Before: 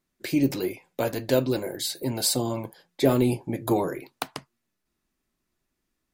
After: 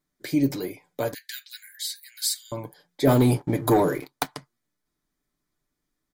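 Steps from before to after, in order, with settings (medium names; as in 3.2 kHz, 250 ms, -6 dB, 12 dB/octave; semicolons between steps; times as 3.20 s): 1.14–2.52 s: steep high-pass 1.6 kHz 72 dB/octave; comb 6.8 ms, depth 42%; 3.07–4.28 s: waveshaping leveller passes 2; band-stop 2.7 kHz, Q 5.8; trim -2 dB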